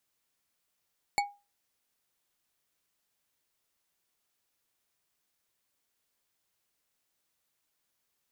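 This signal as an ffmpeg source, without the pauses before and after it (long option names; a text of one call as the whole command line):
ffmpeg -f lavfi -i "aevalsrc='0.0794*pow(10,-3*t/0.28)*sin(2*PI*813*t)+0.0562*pow(10,-3*t/0.138)*sin(2*PI*2241.4*t)+0.0398*pow(10,-3*t/0.086)*sin(2*PI*4393.5*t)+0.0282*pow(10,-3*t/0.06)*sin(2*PI*7262.5*t)+0.02*pow(10,-3*t/0.046)*sin(2*PI*10845.4*t)':duration=0.89:sample_rate=44100" out.wav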